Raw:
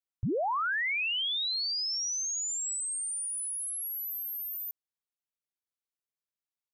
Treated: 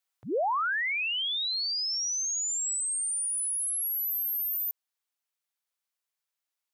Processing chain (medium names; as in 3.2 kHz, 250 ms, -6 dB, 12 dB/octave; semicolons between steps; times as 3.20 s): high-pass 650 Hz 12 dB/octave; peak limiter -33.5 dBFS, peak gain reduction 6.5 dB; gain riding within 4 dB; trim +6.5 dB